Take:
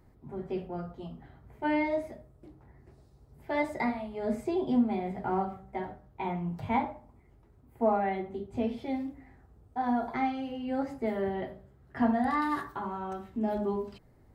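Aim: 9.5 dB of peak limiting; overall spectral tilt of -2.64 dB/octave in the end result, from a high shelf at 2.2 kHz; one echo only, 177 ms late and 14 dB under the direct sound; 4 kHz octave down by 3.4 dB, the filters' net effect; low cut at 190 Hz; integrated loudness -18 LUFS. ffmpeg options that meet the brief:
-af "highpass=190,highshelf=f=2200:g=3,equalizer=f=4000:t=o:g=-7.5,alimiter=level_in=1.12:limit=0.0631:level=0:latency=1,volume=0.891,aecho=1:1:177:0.2,volume=7.5"

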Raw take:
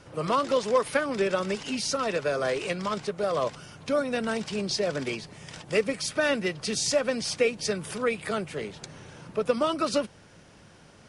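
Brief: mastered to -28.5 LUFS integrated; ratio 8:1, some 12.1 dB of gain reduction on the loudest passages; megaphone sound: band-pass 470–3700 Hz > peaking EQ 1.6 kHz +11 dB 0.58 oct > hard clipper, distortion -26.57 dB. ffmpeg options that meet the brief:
-af "acompressor=threshold=0.0282:ratio=8,highpass=470,lowpass=3700,equalizer=f=1600:t=o:w=0.58:g=11,asoftclip=type=hard:threshold=0.075,volume=2.24"

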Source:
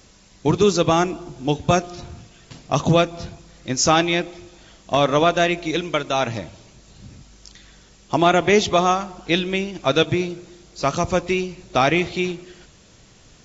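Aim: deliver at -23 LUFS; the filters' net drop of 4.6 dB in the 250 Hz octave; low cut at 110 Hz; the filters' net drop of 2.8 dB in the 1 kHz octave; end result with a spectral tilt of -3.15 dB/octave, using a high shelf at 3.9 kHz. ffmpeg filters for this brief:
-af "highpass=110,equalizer=f=250:t=o:g=-7,equalizer=f=1000:t=o:g=-4,highshelf=f=3900:g=5,volume=0.841"

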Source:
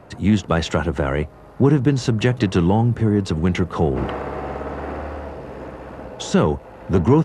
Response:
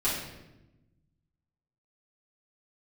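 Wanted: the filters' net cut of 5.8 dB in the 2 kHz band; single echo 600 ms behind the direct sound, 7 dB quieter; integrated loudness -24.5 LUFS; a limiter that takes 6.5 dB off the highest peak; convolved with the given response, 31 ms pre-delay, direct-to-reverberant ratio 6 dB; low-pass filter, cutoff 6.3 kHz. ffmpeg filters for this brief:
-filter_complex "[0:a]lowpass=6300,equalizer=f=2000:t=o:g=-8,alimiter=limit=0.316:level=0:latency=1,aecho=1:1:600:0.447,asplit=2[s0][s1];[1:a]atrim=start_sample=2205,adelay=31[s2];[s1][s2]afir=irnorm=-1:irlink=0,volume=0.168[s3];[s0][s3]amix=inputs=2:normalize=0,volume=0.631"

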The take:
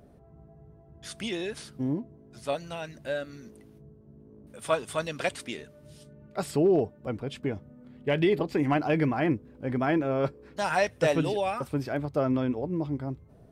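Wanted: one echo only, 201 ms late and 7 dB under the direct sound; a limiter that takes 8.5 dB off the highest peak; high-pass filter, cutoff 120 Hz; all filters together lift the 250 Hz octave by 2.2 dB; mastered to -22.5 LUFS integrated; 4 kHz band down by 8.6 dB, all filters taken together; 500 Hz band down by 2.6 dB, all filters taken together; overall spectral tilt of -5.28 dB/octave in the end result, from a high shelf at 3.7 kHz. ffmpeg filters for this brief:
-af "highpass=120,equalizer=f=250:t=o:g=5,equalizer=f=500:t=o:g=-5,highshelf=f=3700:g=-7.5,equalizer=f=4000:t=o:g=-7,alimiter=limit=0.0841:level=0:latency=1,aecho=1:1:201:0.447,volume=3.16"

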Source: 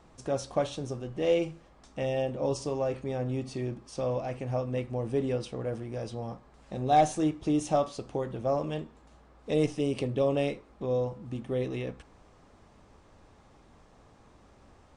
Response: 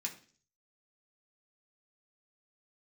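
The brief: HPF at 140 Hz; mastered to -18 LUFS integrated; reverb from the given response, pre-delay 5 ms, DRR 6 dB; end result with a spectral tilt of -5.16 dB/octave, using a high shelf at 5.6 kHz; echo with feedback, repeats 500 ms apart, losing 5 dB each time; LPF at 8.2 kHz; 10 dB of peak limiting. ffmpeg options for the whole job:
-filter_complex "[0:a]highpass=140,lowpass=8200,highshelf=f=5600:g=8,alimiter=limit=0.0794:level=0:latency=1,aecho=1:1:500|1000|1500|2000|2500|3000|3500:0.562|0.315|0.176|0.0988|0.0553|0.031|0.0173,asplit=2[s0][s1];[1:a]atrim=start_sample=2205,adelay=5[s2];[s1][s2]afir=irnorm=-1:irlink=0,volume=0.501[s3];[s0][s3]amix=inputs=2:normalize=0,volume=5.31"

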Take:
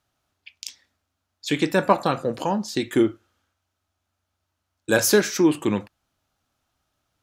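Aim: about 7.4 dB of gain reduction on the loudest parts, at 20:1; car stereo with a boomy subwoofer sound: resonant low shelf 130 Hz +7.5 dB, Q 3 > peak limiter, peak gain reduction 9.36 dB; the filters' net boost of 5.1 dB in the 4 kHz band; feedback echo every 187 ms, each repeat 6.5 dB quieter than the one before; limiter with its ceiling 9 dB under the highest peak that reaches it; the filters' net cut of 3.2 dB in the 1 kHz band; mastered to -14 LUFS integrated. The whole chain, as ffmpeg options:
-af "equalizer=f=1000:t=o:g=-4,equalizer=f=4000:t=o:g=6.5,acompressor=threshold=0.112:ratio=20,alimiter=limit=0.15:level=0:latency=1,lowshelf=f=130:t=q:w=3:g=7.5,aecho=1:1:187|374|561|748|935|1122:0.473|0.222|0.105|0.0491|0.0231|0.0109,volume=9.44,alimiter=limit=0.631:level=0:latency=1"

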